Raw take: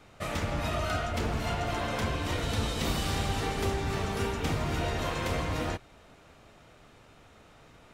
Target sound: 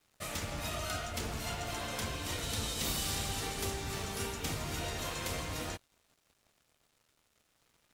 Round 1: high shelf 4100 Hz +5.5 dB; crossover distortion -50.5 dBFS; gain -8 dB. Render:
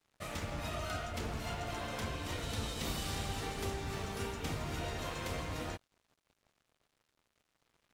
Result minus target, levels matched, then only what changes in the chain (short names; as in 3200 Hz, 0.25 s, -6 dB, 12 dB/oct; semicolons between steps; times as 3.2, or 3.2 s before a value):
8000 Hz band -5.0 dB
change: high shelf 4100 Hz +16 dB